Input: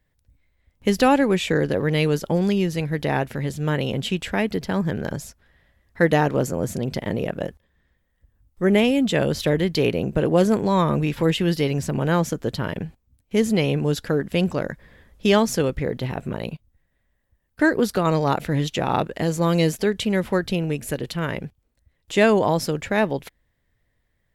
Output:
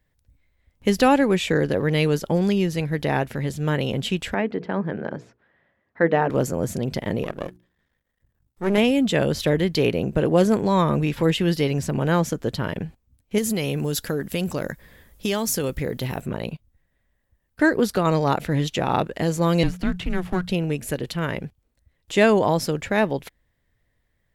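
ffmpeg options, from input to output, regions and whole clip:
-filter_complex "[0:a]asettb=1/sr,asplit=3[s0][s1][s2];[s0]atrim=end=4.344[s3];[s1]atrim=start=4.34:end=6.3,asetpts=PTS-STARTPTS,afade=t=in:d=0.004:c=qsin,afade=t=out:st=1.956:d=0.004:c=qsin,highpass=190,lowpass=2000,bandreject=f=60:t=h:w=6,bandreject=f=120:t=h:w=6,bandreject=f=180:t=h:w=6,bandreject=f=240:t=h:w=6,bandreject=f=300:t=h:w=6,bandreject=f=360:t=h:w=6,bandreject=f=420:t=h:w=6,bandreject=f=480:t=h:w=6[s4];[s2]atrim=start=6.296[s5];[s3][s4]acrossfade=d=0.004:c1=hsin:c2=qsin[s6];[s6][s5]acrossfade=d=0.004:c1=qsin:c2=hsin,asettb=1/sr,asplit=3[s7][s8][s9];[s7]atrim=end=7.234[s10];[s8]atrim=start=7.23:end=8.78,asetpts=PTS-STARTPTS,afade=t=in:d=0.004:c=qsin,afade=t=out:st=1.546:d=0.004:c=qsin,aeval=exprs='if(lt(val(0),0),0.251*val(0),val(0))':c=same,lowshelf=f=76:g=-9.5,bandreject=f=60:t=h:w=6,bandreject=f=120:t=h:w=6,bandreject=f=180:t=h:w=6,bandreject=f=240:t=h:w=6,bandreject=f=300:t=h:w=6,bandreject=f=360:t=h:w=6[s11];[s9]atrim=start=8.776[s12];[s10][s11]acrossfade=d=0.004:c1=hsin:c2=qsin[s13];[s13][s12]acrossfade=d=0.004:c1=qsin:c2=hsin,asettb=1/sr,asplit=3[s14][s15][s16];[s14]atrim=end=13.384[s17];[s15]atrim=start=13.38:end=16.26,asetpts=PTS-STARTPTS,afade=t=in:d=0.004:c=qsin,afade=t=out:st=2.876:d=0.004:c=qsin,aemphasis=mode=production:type=50fm,acompressor=threshold=0.1:ratio=4:attack=3.2:release=140:knee=1:detection=peak[s18];[s16]atrim=start=16.256[s19];[s17][s18]acrossfade=d=0.004:c1=hsin:c2=qsin[s20];[s20][s19]acrossfade=d=0.004:c1=qsin:c2=hsin,asettb=1/sr,asplit=3[s21][s22][s23];[s21]atrim=end=19.634[s24];[s22]atrim=start=19.63:end=20.49,asetpts=PTS-STARTPTS,afade=t=in:d=0.004:c=qsin,afade=t=out:st=0.856:d=0.004:c=qsin,aeval=exprs='if(lt(val(0),0),0.447*val(0),val(0))':c=same,acrossover=split=3700[s25][s26];[s26]acompressor=threshold=0.00447:ratio=4:attack=1:release=60[s27];[s25][s27]amix=inputs=2:normalize=0,afreqshift=-180[s28];[s23]atrim=start=20.486[s29];[s24][s28]acrossfade=d=0.004:c1=hsin:c2=qsin[s30];[s30][s29]acrossfade=d=0.004:c1=qsin:c2=hsin"

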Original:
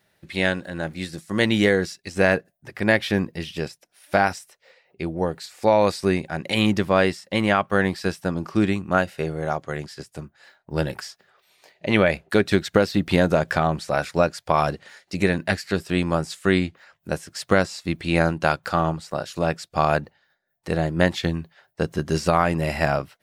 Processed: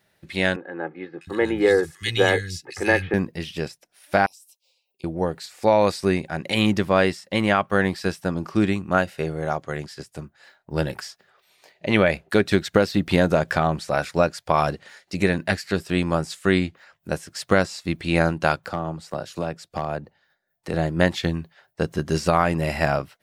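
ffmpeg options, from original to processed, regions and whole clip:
-filter_complex "[0:a]asettb=1/sr,asplit=3[s0][s1][s2];[s0]atrim=end=0.564[s3];[s1]atrim=start=0.56:end=3.14,asetpts=PTS-STARTPTS,afade=t=in:d=0.004:c=qsin,afade=t=out:st=2.576:d=0.004:c=qsin,highpass=42,aecho=1:1:2.4:0.65,atrim=end_sample=113778,acrossover=split=180|2000[s4][s5][s6];[s6]adelay=650[s7];[s4]adelay=710[s8];[s8][s5][s7]amix=inputs=3:normalize=0,atrim=end_sample=113778[s9];[s2]atrim=start=3.136[s10];[s3][s9]acrossfade=d=0.004:c1=hsin:c2=qsin[s11];[s11][s10]acrossfade=d=0.004:c1=qsin:c2=hsin,asettb=1/sr,asplit=3[s12][s13][s14];[s12]atrim=end=4.264[s15];[s13]atrim=start=4.26:end=5.04,asetpts=PTS-STARTPTS,afade=t=in:d=0.004:c=qsin,afade=t=out:st=0.776:d=0.004:c=qsin,aderivative,acompressor=threshold=0.00562:ratio=10:attack=3.2:release=140:knee=1:detection=peak,asuperstop=centerf=1600:order=8:qfactor=1.1[s16];[s14]atrim=start=5.036[s17];[s15][s16]acrossfade=d=0.004:c1=hsin:c2=qsin[s18];[s18][s17]acrossfade=d=0.004:c1=qsin:c2=hsin,asettb=1/sr,asplit=3[s19][s20][s21];[s19]atrim=end=18.564[s22];[s20]atrim=start=18.56:end=20.74,asetpts=PTS-STARTPTS,afade=t=in:d=0.004:c=qsin,afade=t=out:st=2.176:d=0.004:c=qsin,acrossover=split=140|920[s23][s24][s25];[s23]acompressor=threshold=0.0112:ratio=4[s26];[s24]acompressor=threshold=0.0562:ratio=4[s27];[s25]acompressor=threshold=0.0126:ratio=4[s28];[s26][s27][s28]amix=inputs=3:normalize=0,asoftclip=type=hard:threshold=0.168[s29];[s21]atrim=start=20.736[s30];[s22][s29]acrossfade=d=0.004:c1=hsin:c2=qsin[s31];[s31][s30]acrossfade=d=0.004:c1=qsin:c2=hsin"

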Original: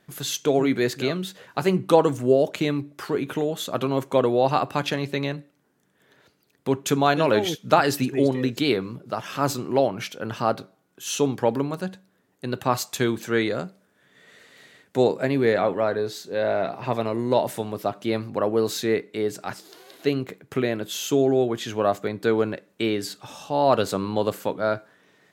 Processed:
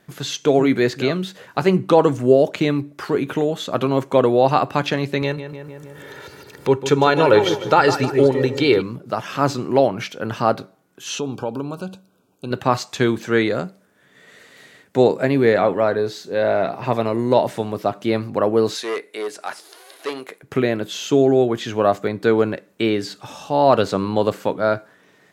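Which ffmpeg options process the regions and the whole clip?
-filter_complex "[0:a]asettb=1/sr,asplit=3[s0][s1][s2];[s0]atrim=end=5.224[s3];[s1]atrim=start=5.22:end=8.82,asetpts=PTS-STARTPTS,afade=t=in:d=0.004:c=qsin,afade=t=out:st=3.596:d=0.004:c=qsin,aecho=1:1:2.2:0.53,atrim=end_sample=158760,asplit=2[s4][s5];[s5]adelay=153,lowpass=f=2800:p=1,volume=0.282,asplit=2[s6][s7];[s7]adelay=153,lowpass=f=2800:p=1,volume=0.48,asplit=2[s8][s9];[s9]adelay=153,lowpass=f=2800:p=1,volume=0.48,asplit=2[s10][s11];[s11]adelay=153,lowpass=f=2800:p=1,volume=0.48,asplit=2[s12][s13];[s13]adelay=153,lowpass=f=2800:p=1,volume=0.48[s14];[s4][s6][s8][s10][s12][s14]amix=inputs=6:normalize=0,atrim=end_sample=158760,acompressor=mode=upward:threshold=0.0398:ratio=2.5:attack=3.2:release=140:knee=2.83:detection=peak[s15];[s2]atrim=start=8.816[s16];[s3][s15]acrossfade=d=0.004:c1=hsin:c2=qsin[s17];[s17][s16]acrossfade=d=0.004:c1=qsin:c2=hsin,asettb=1/sr,asplit=3[s18][s19][s20];[s18]atrim=end=11.194[s21];[s19]atrim=start=11.19:end=12.51,asetpts=PTS-STARTPTS,afade=t=in:d=0.004:c=qsin,afade=t=out:st=1.316:d=0.004:c=qsin,acompressor=threshold=0.0251:ratio=2:attack=3.2:release=140:knee=1:detection=peak,asuperstop=centerf=1900:order=20:qfactor=2.6[s22];[s20]atrim=start=12.506[s23];[s21][s22]acrossfade=d=0.004:c1=hsin:c2=qsin[s24];[s24][s23]acrossfade=d=0.004:c1=qsin:c2=hsin,asettb=1/sr,asplit=3[s25][s26][s27];[s25]atrim=end=18.754[s28];[s26]atrim=start=18.75:end=20.43,asetpts=PTS-STARTPTS,afade=t=in:d=0.004:c=qsin,afade=t=out:st=1.676:d=0.004:c=qsin,volume=10,asoftclip=hard,volume=0.1,highpass=540,equalizer=f=10000:t=o:w=0.39:g=14[s29];[s27]atrim=start=20.426[s30];[s28][s29]acrossfade=d=0.004:c1=hsin:c2=qsin[s31];[s31][s30]acrossfade=d=0.004:c1=qsin:c2=hsin,equalizer=f=3500:w=1.5:g=-2,acrossover=split=6100[s32][s33];[s33]acompressor=threshold=0.002:ratio=4:attack=1:release=60[s34];[s32][s34]amix=inputs=2:normalize=0,alimiter=level_in=2:limit=0.891:release=50:level=0:latency=1,volume=0.891"

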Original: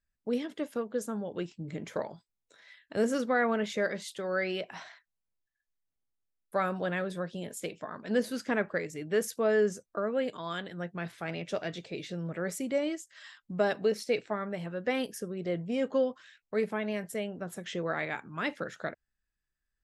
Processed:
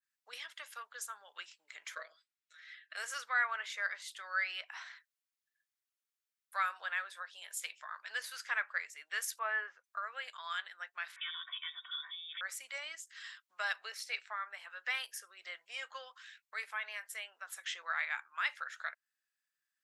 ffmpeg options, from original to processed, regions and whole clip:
-filter_complex "[0:a]asettb=1/sr,asplit=3[s0][s1][s2];[s0]atrim=end=1.954[s3];[s1]atrim=start=1.95:end=2.96,asetpts=PTS-STARTPTS,afade=t=in:d=0.004:c=qsin,afade=t=out:st=1.006:d=0.004:c=qsin,asuperstop=centerf=880:order=4:qfactor=1.8,aemphasis=mode=reproduction:type=bsi,aecho=1:1:6.3:0.93,atrim=end_sample=44541[s4];[s2]atrim=start=2.956[s5];[s3][s4]acrossfade=d=0.004:c1=hsin:c2=qsin[s6];[s6][s5]acrossfade=d=0.004:c1=qsin:c2=hsin,asettb=1/sr,asplit=3[s7][s8][s9];[s7]atrim=end=9.394[s10];[s8]atrim=start=9.39:end=9.84,asetpts=PTS-STARTPTS,afade=t=in:d=0.004:c=qsin,afade=t=out:st=0.446:d=0.004:c=qsin,lowpass=f=2800:w=0.5412,lowpass=f=2800:w=1.3066,equalizer=f=900:w=1.7:g=7[s11];[s9]atrim=start=9.836[s12];[s10][s11]acrossfade=d=0.004:c1=hsin:c2=qsin[s13];[s13][s12]acrossfade=d=0.004:c1=qsin:c2=hsin,asettb=1/sr,asplit=3[s14][s15][s16];[s14]atrim=end=11.164[s17];[s15]atrim=start=11.16:end=12.41,asetpts=PTS-STARTPTS,afade=t=in:d=0.004:c=qsin,afade=t=out:st=1.246:d=0.004:c=qsin,acompressor=threshold=0.00631:ratio=2:attack=3.2:release=140:knee=1:detection=peak,aecho=1:1:2.6:0.9,atrim=end_sample=55125,lowpass=f=3200:t=q:w=0.5098,lowpass=f=3200:t=q:w=0.6013,lowpass=f=3200:t=q:w=0.9,lowpass=f=3200:t=q:w=2.563,afreqshift=-3800[s18];[s16]atrim=start=12.406[s19];[s17][s18]acrossfade=d=0.004:c1=hsin:c2=qsin[s20];[s20][s19]acrossfade=d=0.004:c1=qsin:c2=hsin,highpass=f=1200:w=0.5412,highpass=f=1200:w=1.3066,adynamicequalizer=threshold=0.00316:dfrequency=2200:dqfactor=0.7:tfrequency=2200:tqfactor=0.7:attack=5:release=100:ratio=0.375:range=4:mode=cutabove:tftype=highshelf,volume=1.26"

